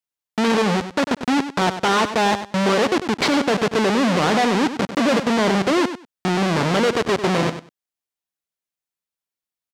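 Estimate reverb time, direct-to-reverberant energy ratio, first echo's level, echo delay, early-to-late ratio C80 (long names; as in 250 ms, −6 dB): no reverb audible, no reverb audible, −11.0 dB, 97 ms, no reverb audible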